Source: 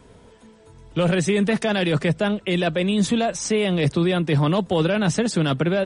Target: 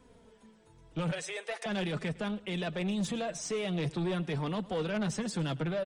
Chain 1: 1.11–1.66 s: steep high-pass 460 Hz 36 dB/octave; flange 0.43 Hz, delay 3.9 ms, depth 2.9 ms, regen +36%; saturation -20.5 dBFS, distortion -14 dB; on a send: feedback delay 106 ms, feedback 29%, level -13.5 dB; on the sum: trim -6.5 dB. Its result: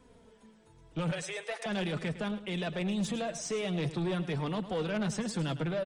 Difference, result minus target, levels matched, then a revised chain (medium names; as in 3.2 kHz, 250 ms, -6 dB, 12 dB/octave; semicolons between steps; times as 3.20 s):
echo-to-direct +7.5 dB
1.11–1.66 s: steep high-pass 460 Hz 36 dB/octave; flange 0.43 Hz, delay 3.9 ms, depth 2.9 ms, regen +36%; saturation -20.5 dBFS, distortion -14 dB; on a send: feedback delay 106 ms, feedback 29%, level -21 dB; on the sum: trim -6.5 dB